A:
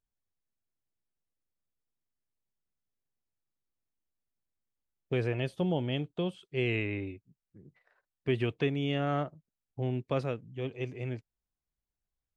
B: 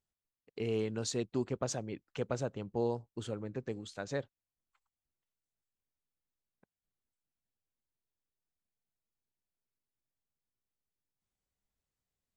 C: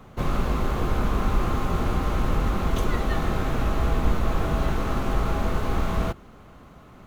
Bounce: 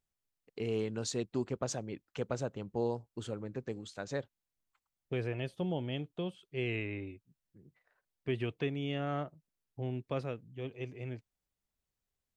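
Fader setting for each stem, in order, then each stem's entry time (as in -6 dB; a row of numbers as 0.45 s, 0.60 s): -5.0 dB, -0.5 dB, mute; 0.00 s, 0.00 s, mute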